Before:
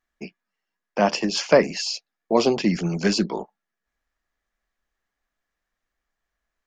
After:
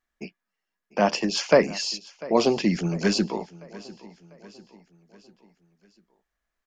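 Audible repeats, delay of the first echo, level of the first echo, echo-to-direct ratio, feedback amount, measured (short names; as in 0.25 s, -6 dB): 3, 0.696 s, -20.0 dB, -19.0 dB, 50%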